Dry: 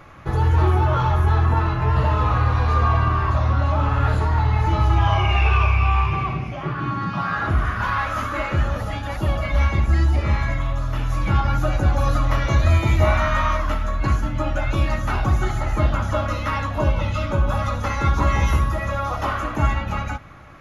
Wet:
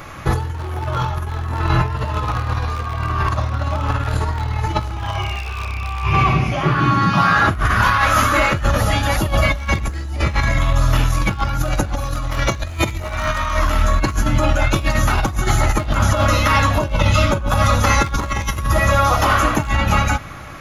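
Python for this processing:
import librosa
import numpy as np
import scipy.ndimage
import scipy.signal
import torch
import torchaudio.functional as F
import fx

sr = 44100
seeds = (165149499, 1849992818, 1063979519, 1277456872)

y = np.minimum(x, 2.0 * 10.0 ** (-12.0 / 20.0) - x)
y = fx.high_shelf(y, sr, hz=4200.0, db=12.0)
y = fx.over_compress(y, sr, threshold_db=-22.0, ratio=-0.5)
y = y * 10.0 ** (5.5 / 20.0)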